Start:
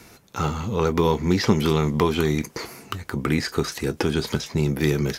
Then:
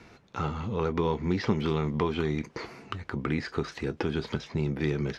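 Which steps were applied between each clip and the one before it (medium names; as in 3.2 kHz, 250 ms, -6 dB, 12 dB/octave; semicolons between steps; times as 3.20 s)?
low-pass 3.5 kHz 12 dB/octave; in parallel at -0.5 dB: compression, threshold -29 dBFS, peak gain reduction 16 dB; on the sum: trim -9 dB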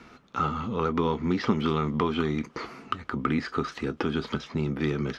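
graphic EQ with 31 bands 100 Hz -9 dB, 250 Hz +7 dB, 1.25 kHz +10 dB, 3.15 kHz +4 dB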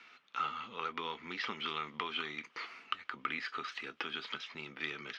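band-pass filter 2.7 kHz, Q 1.5; trim +1 dB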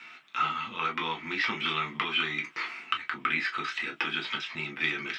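reverberation, pre-delay 3 ms, DRR 1 dB; trim +8 dB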